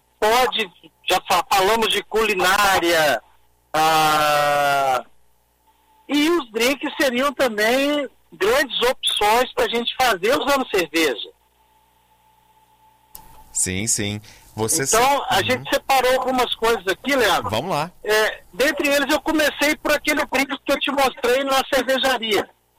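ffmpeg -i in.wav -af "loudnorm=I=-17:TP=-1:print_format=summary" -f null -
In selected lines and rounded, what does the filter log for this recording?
Input Integrated:    -19.1 LUFS
Input True Peak:      -7.4 dBTP
Input LRA:             4.6 LU
Input Threshold:     -29.8 LUFS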